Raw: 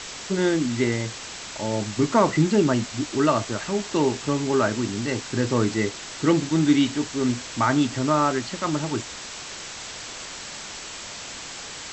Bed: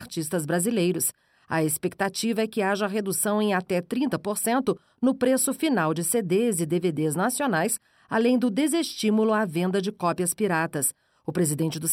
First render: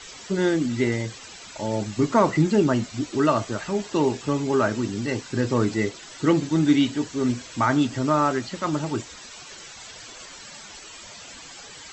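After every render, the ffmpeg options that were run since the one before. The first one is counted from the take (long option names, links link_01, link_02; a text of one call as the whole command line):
ffmpeg -i in.wav -af "afftdn=noise_reduction=12:noise_floor=-37" out.wav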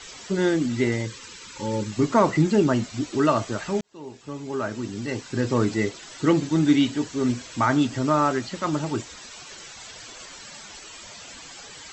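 ffmpeg -i in.wav -filter_complex "[0:a]asettb=1/sr,asplit=3[link_01][link_02][link_03];[link_01]atrim=end=1.064[link_04];[link_02]atrim=start=1.06:end=1.92,asetpts=PTS-STARTPTS,afade=type=in:duration=0.004:curve=qsin,afade=type=out:start_time=0.856:duration=0.004:curve=qsin,asuperstop=centerf=690:order=20:qfactor=2.5[link_05];[link_03]atrim=start=1.916[link_06];[link_04][link_05]acrossfade=duration=0.004:curve1=hsin:curve2=qsin[link_07];[link_07][link_06]acrossfade=duration=0.004:curve1=qsin:curve2=hsin,asplit=2[link_08][link_09];[link_08]atrim=end=3.81,asetpts=PTS-STARTPTS,afade=type=out:start_time=3.806:duration=0.004:curve=hsin[link_10];[link_09]atrim=start=3.81,asetpts=PTS-STARTPTS,afade=type=in:duration=1.75[link_11];[link_10][link_11]concat=n=2:v=0:a=1" out.wav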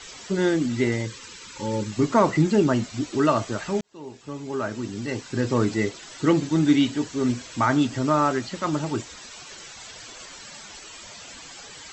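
ffmpeg -i in.wav -af anull out.wav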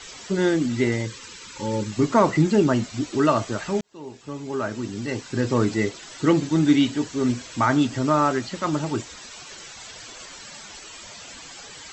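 ffmpeg -i in.wav -af "volume=1dB" out.wav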